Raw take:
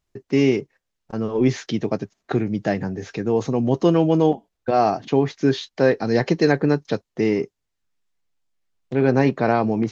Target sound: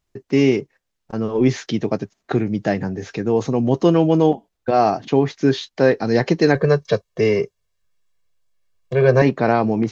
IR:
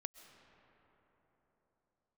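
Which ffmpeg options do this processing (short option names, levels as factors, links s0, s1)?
-filter_complex "[0:a]asettb=1/sr,asplit=3[s0][s1][s2];[s0]atrim=end=6.554[s3];[s1]atrim=start=6.55:end=9.22,asetpts=PTS-STARTPTS,afade=t=in:d=0.004:c=qsin,afade=t=out:st=2.666:d=0.004:c=qsin,aecho=1:1:1.8:0.99,atrim=end_sample=117747[s4];[s2]atrim=start=9.216[s5];[s3][s4]acrossfade=d=0.004:c1=hsin:c2=qsin[s6];[s6][s5]acrossfade=d=0.004:c1=qsin:c2=hsin,volume=1.26"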